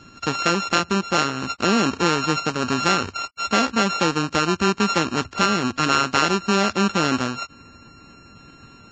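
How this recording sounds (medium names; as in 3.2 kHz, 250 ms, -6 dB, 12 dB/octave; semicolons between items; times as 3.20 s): a buzz of ramps at a fixed pitch in blocks of 32 samples; Vorbis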